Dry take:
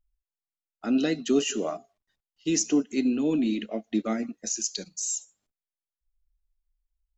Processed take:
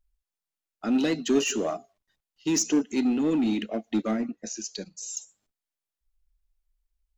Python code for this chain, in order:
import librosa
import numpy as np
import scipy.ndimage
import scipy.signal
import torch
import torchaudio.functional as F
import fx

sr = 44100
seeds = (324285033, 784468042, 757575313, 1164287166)

p1 = fx.lowpass(x, sr, hz=2200.0, slope=6, at=(4.11, 5.17))
p2 = 10.0 ** (-26.5 / 20.0) * (np.abs((p1 / 10.0 ** (-26.5 / 20.0) + 3.0) % 4.0 - 2.0) - 1.0)
p3 = p1 + F.gain(torch.from_numpy(p2), -9.5).numpy()
y = fx.vibrato(p3, sr, rate_hz=1.9, depth_cents=26.0)